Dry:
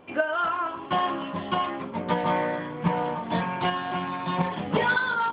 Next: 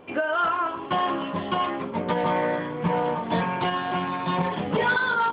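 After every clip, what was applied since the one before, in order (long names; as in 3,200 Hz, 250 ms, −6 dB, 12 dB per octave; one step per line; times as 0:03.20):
parametric band 440 Hz +4.5 dB 0.37 octaves
brickwall limiter −17 dBFS, peak gain reduction 7.5 dB
level +2.5 dB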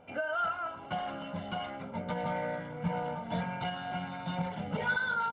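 high-shelf EQ 3,800 Hz −9 dB
comb filter 1.4 ms, depth 75%
dynamic equaliser 740 Hz, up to −4 dB, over −32 dBFS, Q 0.75
level −8.5 dB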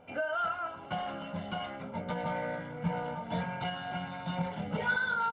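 double-tracking delay 24 ms −12 dB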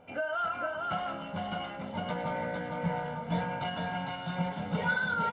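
single-tap delay 455 ms −3.5 dB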